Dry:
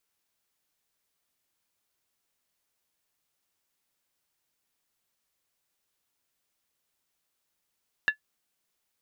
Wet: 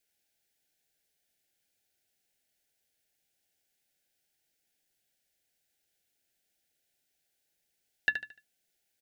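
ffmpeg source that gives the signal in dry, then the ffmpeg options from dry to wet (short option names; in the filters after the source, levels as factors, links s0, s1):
-f lavfi -i "aevalsrc='0.178*pow(10,-3*t/0.1)*sin(2*PI*1720*t)+0.0596*pow(10,-3*t/0.079)*sin(2*PI*2741.7*t)+0.02*pow(10,-3*t/0.068)*sin(2*PI*3673.9*t)+0.00668*pow(10,-3*t/0.066)*sin(2*PI*3949.1*t)+0.00224*pow(10,-3*t/0.061)*sin(2*PI*4563.2*t)':d=0.63:s=44100"
-filter_complex "[0:a]asuperstop=centerf=1100:order=12:qfactor=2,bandreject=f=60:t=h:w=6,bandreject=f=120:t=h:w=6,bandreject=f=180:t=h:w=6,bandreject=f=240:t=h:w=6,bandreject=f=300:t=h:w=6,asplit=2[s0][s1];[s1]aecho=0:1:74|148|222|296:0.376|0.128|0.0434|0.0148[s2];[s0][s2]amix=inputs=2:normalize=0"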